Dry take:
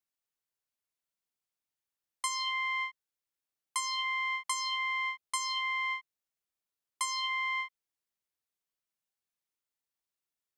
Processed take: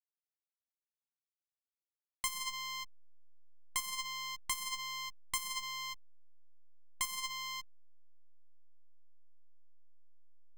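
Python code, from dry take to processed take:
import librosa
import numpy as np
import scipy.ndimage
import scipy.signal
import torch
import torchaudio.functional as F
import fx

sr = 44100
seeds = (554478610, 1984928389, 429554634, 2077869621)

y = fx.cheby_harmonics(x, sr, harmonics=(7,), levels_db=(-11,), full_scale_db=-18.5)
y = fx.backlash(y, sr, play_db=-32.5)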